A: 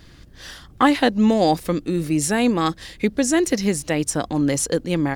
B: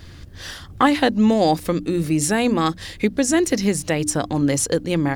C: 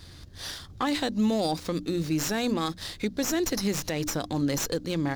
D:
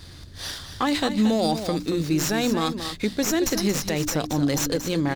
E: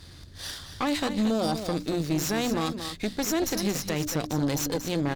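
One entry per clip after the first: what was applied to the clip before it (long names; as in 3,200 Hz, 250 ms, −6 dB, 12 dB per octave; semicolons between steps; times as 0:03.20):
parametric band 89 Hz +9 dB 0.58 octaves; mains-hum notches 60/120/180/240/300 Hz; in parallel at −1 dB: downward compressor, threshold −26 dBFS, peak gain reduction 15 dB; on the sum: level −1.5 dB
flat-topped bell 5,000 Hz +8.5 dB 1.2 octaves; brickwall limiter −10.5 dBFS, peak gain reduction 7 dB; windowed peak hold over 3 samples; level −7 dB
single-tap delay 228 ms −9.5 dB; level +4 dB
tube saturation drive 19 dB, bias 0.7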